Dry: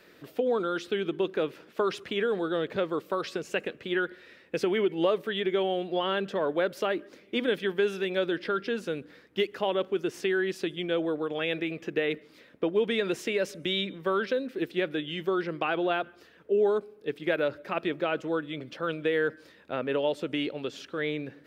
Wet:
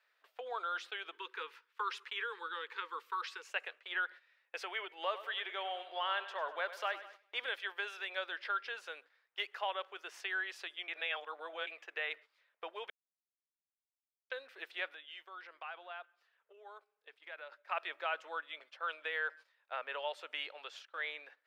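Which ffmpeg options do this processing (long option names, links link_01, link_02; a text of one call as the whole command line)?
ffmpeg -i in.wav -filter_complex "[0:a]asettb=1/sr,asplit=3[link_01][link_02][link_03];[link_01]atrim=end=1.154[link_04];[link_02]atrim=start=1.15:end=3.49,asetpts=PTS-STARTPTS,afade=type=in:duration=0.004:curve=qsin,afade=type=out:start_time=2.336:duration=0.004:curve=qsin,asuperstop=centerf=660:order=20:qfactor=2[link_05];[link_03]atrim=start=3.486[link_06];[link_04][link_05]acrossfade=duration=0.004:curve1=hsin:curve2=qsin[link_07];[link_07][link_06]acrossfade=duration=0.004:curve1=qsin:curve2=hsin,asettb=1/sr,asplit=3[link_08][link_09][link_10];[link_08]atrim=end=4.884[link_11];[link_09]atrim=start=4.88:end=7.5,asetpts=PTS-STARTPTS,afade=type=in:duration=0.004:curve=qsin,afade=type=out:start_time=2.616:duration=0.004:curve=qsin,aecho=1:1:99|198|297|396|495:0.211|0.114|0.0616|0.0333|0.018,atrim=end_sample=115542[link_12];[link_10]atrim=start=7.496[link_13];[link_11][link_12]acrossfade=duration=0.004:curve1=hsin:curve2=qsin[link_14];[link_14][link_13]acrossfade=duration=0.004:curve1=qsin:curve2=hsin,asettb=1/sr,asplit=3[link_15][link_16][link_17];[link_15]atrim=end=14.914[link_18];[link_16]atrim=start=14.91:end=17.52,asetpts=PTS-STARTPTS,afade=type=in:duration=0.004:curve=qsin,afade=type=out:start_time=2.606:duration=0.004:curve=qsin,acompressor=threshold=-40dB:ratio=2.5:attack=3.2:release=140:knee=1:detection=peak[link_19];[link_17]atrim=start=17.516[link_20];[link_18][link_19]acrossfade=duration=0.004:curve1=hsin:curve2=qsin[link_21];[link_21][link_20]acrossfade=duration=0.004:curve1=qsin:curve2=hsin,asplit=5[link_22][link_23][link_24][link_25][link_26];[link_22]atrim=end=10.882[link_27];[link_23]atrim=start=10.878:end=11.672,asetpts=PTS-STARTPTS,areverse[link_28];[link_24]atrim=start=11.668:end=12.9,asetpts=PTS-STARTPTS,afade=type=out:start_time=1.228:duration=0.004:curve=hsin[link_29];[link_25]atrim=start=12.9:end=14.3,asetpts=PTS-STARTPTS,volume=0[link_30];[link_26]atrim=start=14.3,asetpts=PTS-STARTPTS,afade=type=in:duration=0.004:curve=hsin[link_31];[link_27][link_28]acrossfade=duration=0.004:curve1=hsin:curve2=hsin[link_32];[link_29][link_30][link_31]concat=n=3:v=0:a=1[link_33];[link_32][link_33]acrossfade=duration=0.004:curve1=hsin:curve2=hsin,agate=range=-13dB:threshold=-42dB:ratio=16:detection=peak,highpass=frequency=780:width=0.5412,highpass=frequency=780:width=1.3066,highshelf=frequency=4800:gain=-10,volume=-2.5dB" out.wav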